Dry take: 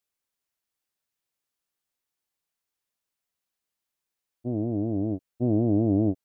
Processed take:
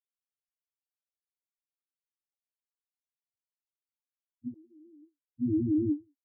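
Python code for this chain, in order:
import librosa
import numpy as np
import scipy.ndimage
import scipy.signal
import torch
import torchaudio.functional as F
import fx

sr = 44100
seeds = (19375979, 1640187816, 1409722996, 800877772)

y = fx.spec_topn(x, sr, count=2)
y = fx.highpass(y, sr, hz=620.0, slope=24, at=(4.54, 5.31))
y = fx.end_taper(y, sr, db_per_s=310.0)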